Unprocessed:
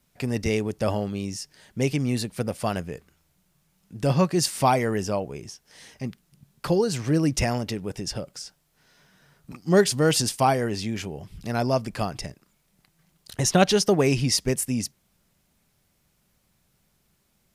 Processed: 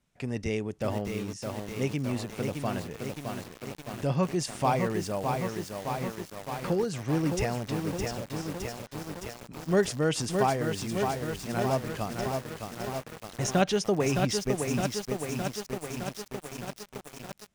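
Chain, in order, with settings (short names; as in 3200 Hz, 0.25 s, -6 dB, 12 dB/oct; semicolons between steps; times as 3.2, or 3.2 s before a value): LPF 7700 Hz 12 dB/oct; bell 4600 Hz -5.5 dB 0.49 oct; lo-fi delay 0.614 s, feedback 80%, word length 6-bit, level -4 dB; gain -6 dB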